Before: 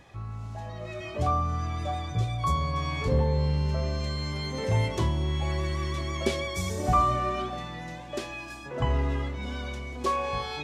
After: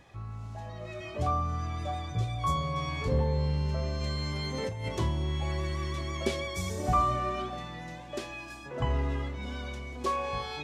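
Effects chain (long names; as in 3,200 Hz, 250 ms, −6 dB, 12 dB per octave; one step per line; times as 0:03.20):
0:02.34–0:02.89: double-tracking delay 20 ms −5.5 dB
0:04.01–0:04.89: compressor whose output falls as the input rises −29 dBFS, ratio −1
level −3 dB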